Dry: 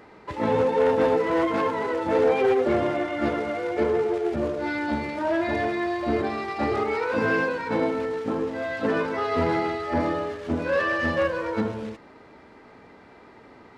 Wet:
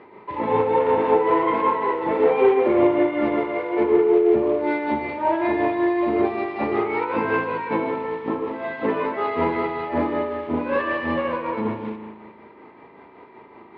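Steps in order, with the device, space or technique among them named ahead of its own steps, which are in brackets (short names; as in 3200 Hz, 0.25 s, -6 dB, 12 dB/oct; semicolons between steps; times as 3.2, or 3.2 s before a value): combo amplifier with spring reverb and tremolo (spring tank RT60 1.5 s, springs 37 ms, chirp 30 ms, DRR 3.5 dB; tremolo 5.3 Hz, depth 40%; speaker cabinet 86–3500 Hz, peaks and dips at 97 Hz -5 dB, 380 Hz +8 dB, 990 Hz +9 dB, 1500 Hz -5 dB, 2200 Hz +4 dB)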